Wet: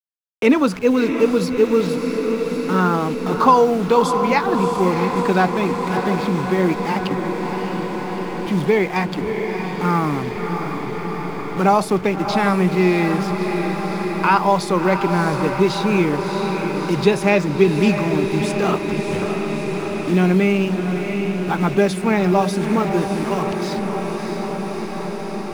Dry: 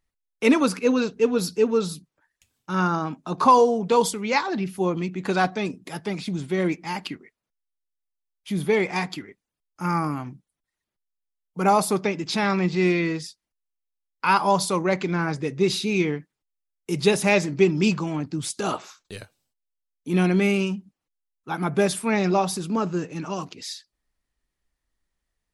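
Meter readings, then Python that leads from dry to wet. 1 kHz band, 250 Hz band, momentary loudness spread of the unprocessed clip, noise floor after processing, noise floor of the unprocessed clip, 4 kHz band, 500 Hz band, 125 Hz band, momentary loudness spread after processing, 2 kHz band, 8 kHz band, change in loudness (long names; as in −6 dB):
+5.5 dB, +6.5 dB, 14 LU, −27 dBFS, −85 dBFS, +2.0 dB, +6.0 dB, +7.0 dB, 9 LU, +4.5 dB, −2.0 dB, +4.0 dB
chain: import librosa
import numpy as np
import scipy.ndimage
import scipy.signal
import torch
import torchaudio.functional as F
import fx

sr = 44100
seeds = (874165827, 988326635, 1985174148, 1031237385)

y = fx.delta_hold(x, sr, step_db=-35.0)
y = fx.lowpass(y, sr, hz=3100.0, slope=6)
y = fx.echo_diffused(y, sr, ms=642, feedback_pct=74, wet_db=-8.5)
y = fx.band_squash(y, sr, depth_pct=40)
y = F.gain(torch.from_numpy(y), 5.0).numpy()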